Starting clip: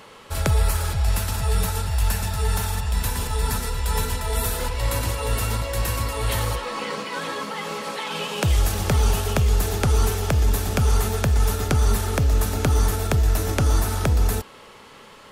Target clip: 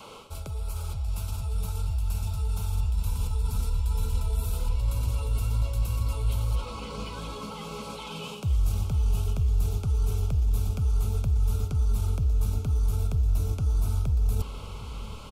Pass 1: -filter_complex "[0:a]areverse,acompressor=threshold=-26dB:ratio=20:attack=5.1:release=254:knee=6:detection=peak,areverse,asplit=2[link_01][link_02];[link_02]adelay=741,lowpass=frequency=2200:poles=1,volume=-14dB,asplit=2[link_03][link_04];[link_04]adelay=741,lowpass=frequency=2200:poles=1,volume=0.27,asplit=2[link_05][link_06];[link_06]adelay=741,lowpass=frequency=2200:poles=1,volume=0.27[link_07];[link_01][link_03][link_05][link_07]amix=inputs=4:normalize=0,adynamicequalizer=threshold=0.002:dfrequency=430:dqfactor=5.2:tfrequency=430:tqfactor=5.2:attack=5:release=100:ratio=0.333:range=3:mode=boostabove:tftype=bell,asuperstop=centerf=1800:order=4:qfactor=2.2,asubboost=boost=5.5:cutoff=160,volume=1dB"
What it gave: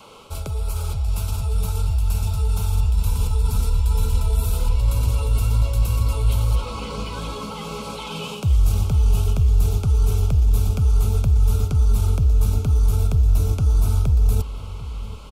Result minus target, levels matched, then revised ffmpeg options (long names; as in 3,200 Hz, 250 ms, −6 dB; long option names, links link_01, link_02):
downward compressor: peak gain reduction −7.5 dB
-filter_complex "[0:a]areverse,acompressor=threshold=-34dB:ratio=20:attack=5.1:release=254:knee=6:detection=peak,areverse,asplit=2[link_01][link_02];[link_02]adelay=741,lowpass=frequency=2200:poles=1,volume=-14dB,asplit=2[link_03][link_04];[link_04]adelay=741,lowpass=frequency=2200:poles=1,volume=0.27,asplit=2[link_05][link_06];[link_06]adelay=741,lowpass=frequency=2200:poles=1,volume=0.27[link_07];[link_01][link_03][link_05][link_07]amix=inputs=4:normalize=0,adynamicequalizer=threshold=0.002:dfrequency=430:dqfactor=5.2:tfrequency=430:tqfactor=5.2:attack=5:release=100:ratio=0.333:range=3:mode=boostabove:tftype=bell,asuperstop=centerf=1800:order=4:qfactor=2.2,asubboost=boost=5.5:cutoff=160,volume=1dB"